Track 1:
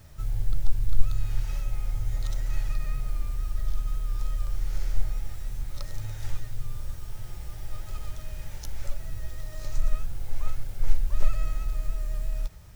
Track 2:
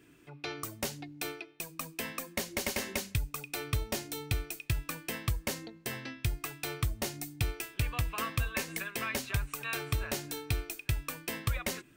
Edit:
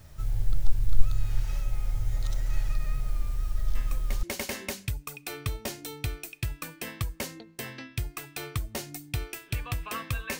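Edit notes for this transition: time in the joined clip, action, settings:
track 1
3.75 add track 2 from 2.02 s 0.48 s -7.5 dB
4.23 switch to track 2 from 2.5 s

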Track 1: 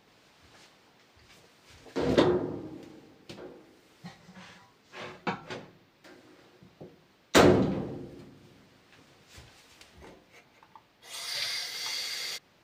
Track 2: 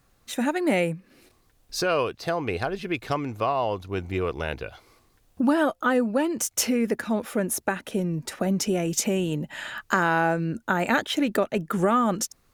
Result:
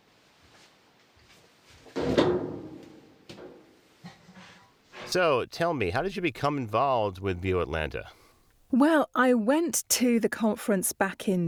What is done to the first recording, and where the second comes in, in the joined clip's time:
track 1
4.62 add track 2 from 1.29 s 0.50 s -13.5 dB
5.12 switch to track 2 from 1.79 s

